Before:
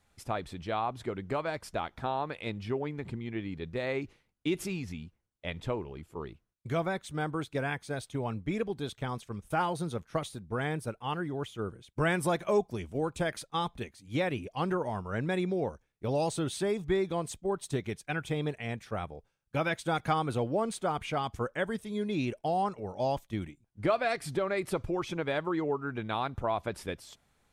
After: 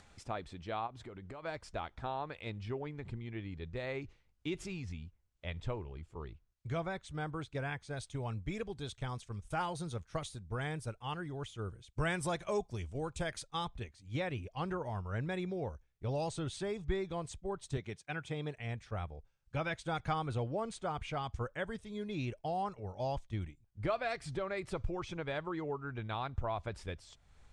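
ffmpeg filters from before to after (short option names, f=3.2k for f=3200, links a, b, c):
-filter_complex "[0:a]asplit=3[a][b][c];[a]afade=t=out:st=0.86:d=0.02[d];[b]acompressor=threshold=-37dB:ratio=6:attack=3.2:release=140:knee=1:detection=peak,afade=t=in:st=0.86:d=0.02,afade=t=out:st=1.42:d=0.02[e];[c]afade=t=in:st=1.42:d=0.02[f];[d][e][f]amix=inputs=3:normalize=0,asettb=1/sr,asplit=3[g][h][i];[g]atrim=end=7.974[j];[h]atrim=start=7.97:end=13.65,asetpts=PTS-STARTPTS,afade=t=in:d=0.004:c=qsin,afade=t=out:st=5.676:d=0.004:c=qsin,aemphasis=mode=production:type=cd[k];[i]atrim=start=13.646[l];[j][k]acrossfade=d=0.004:c1=hsin:c2=qsin[m];[m][l]acrossfade=d=0.004:c1=qsin:c2=hsin,asettb=1/sr,asplit=3[n][o][p];[n]atrim=end=17.774[q];[o]atrim=start=17.77:end=18.58,asetpts=PTS-STARTPTS,afade=t=in:d=0.004:c=qsin,afade=t=out:st=0.806:d=0.004:c=qsin,highpass=140[r];[p]atrim=start=18.576[s];[q][r]acrossfade=d=0.004:c1=hsin:c2=qsin[t];[t][s]acrossfade=d=0.004:c1=qsin:c2=hsin,lowpass=f=8.4k:w=0.5412,lowpass=f=8.4k:w=1.3066,asubboost=boost=4.5:cutoff=100,acompressor=mode=upward:threshold=-42dB:ratio=2.5,volume=-6dB"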